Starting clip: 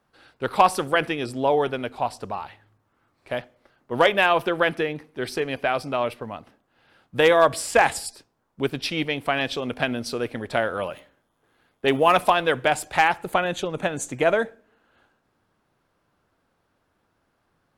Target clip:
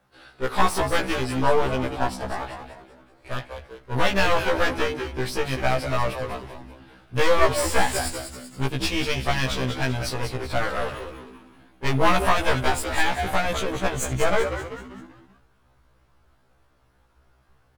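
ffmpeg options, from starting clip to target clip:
ffmpeg -i in.wav -filter_complex "[0:a]asubboost=boost=7:cutoff=78,alimiter=limit=-9.5dB:level=0:latency=1:release=59,aeval=exprs='clip(val(0),-1,0.0126)':channel_layout=same,asplit=6[link_01][link_02][link_03][link_04][link_05][link_06];[link_02]adelay=193,afreqshift=-84,volume=-8dB[link_07];[link_03]adelay=386,afreqshift=-168,volume=-14.9dB[link_08];[link_04]adelay=579,afreqshift=-252,volume=-21.9dB[link_09];[link_05]adelay=772,afreqshift=-336,volume=-28.8dB[link_10];[link_06]adelay=965,afreqshift=-420,volume=-35.7dB[link_11];[link_01][link_07][link_08][link_09][link_10][link_11]amix=inputs=6:normalize=0,afftfilt=real='re*1.73*eq(mod(b,3),0)':imag='im*1.73*eq(mod(b,3),0)':win_size=2048:overlap=0.75,volume=6.5dB" out.wav

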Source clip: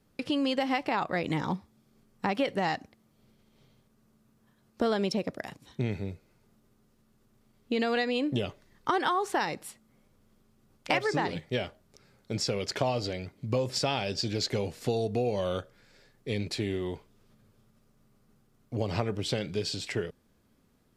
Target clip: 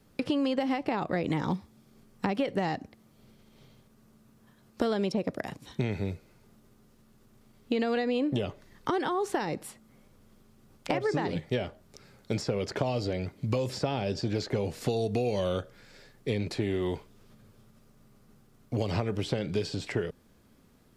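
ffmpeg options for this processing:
ffmpeg -i in.wav -filter_complex "[0:a]acrossover=split=580|1600[link_01][link_02][link_03];[link_01]acompressor=threshold=-33dB:ratio=4[link_04];[link_02]acompressor=threshold=-44dB:ratio=4[link_05];[link_03]acompressor=threshold=-48dB:ratio=4[link_06];[link_04][link_05][link_06]amix=inputs=3:normalize=0,volume=6dB" out.wav

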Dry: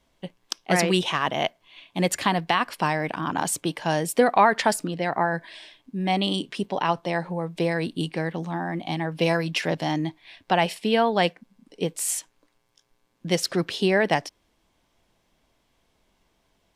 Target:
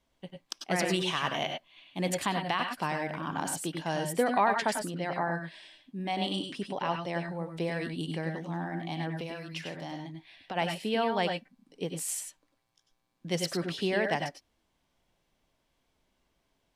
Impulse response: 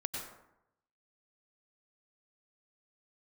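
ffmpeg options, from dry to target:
-filter_complex "[0:a]asettb=1/sr,asplit=3[link_01][link_02][link_03];[link_01]atrim=end=1.014[link_04];[link_02]atrim=start=1.01:end=1.44,asetpts=PTS-STARTPTS,afade=type=in:duration=0.004:curve=qsin,afade=type=out:start_time=0.426:duration=0.004:curve=qsin,equalizer=frequency=8100:width=0.34:gain=5.5[link_05];[link_03]atrim=start=1.436[link_06];[link_04][link_05]acrossfade=duration=0.004:curve1=hsin:curve2=qsin[link_07];[link_07][link_06]acrossfade=duration=0.004:curve1=qsin:curve2=hsin,asplit=3[link_08][link_09][link_10];[link_08]afade=type=out:start_time=9.18:duration=0.02[link_11];[link_09]acompressor=threshold=-29dB:ratio=4,afade=type=in:start_time=9.18:duration=0.02,afade=type=out:start_time=10.55:duration=0.02[link_12];[link_10]afade=type=in:start_time=10.55:duration=0.02[link_13];[link_11][link_12][link_13]amix=inputs=3:normalize=0[link_14];[1:a]atrim=start_sample=2205,afade=type=out:start_time=0.16:duration=0.01,atrim=end_sample=7497[link_15];[link_14][link_15]afir=irnorm=-1:irlink=0,volume=-7dB"

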